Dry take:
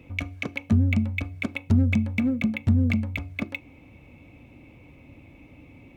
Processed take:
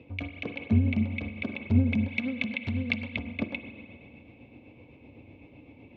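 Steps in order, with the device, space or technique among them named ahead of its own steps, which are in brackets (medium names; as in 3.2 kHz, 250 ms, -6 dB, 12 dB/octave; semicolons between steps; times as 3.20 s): combo amplifier with spring reverb and tremolo (spring tank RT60 2.3 s, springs 42/52 ms, chirp 30 ms, DRR 7 dB; tremolo 7.9 Hz, depth 41%; cabinet simulation 84–4100 Hz, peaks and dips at 160 Hz -5 dB, 460 Hz +5 dB, 1.3 kHz -8 dB, 1.9 kHz -6 dB); 2.08–3.16 s: tilt shelf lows -8 dB, about 1.1 kHz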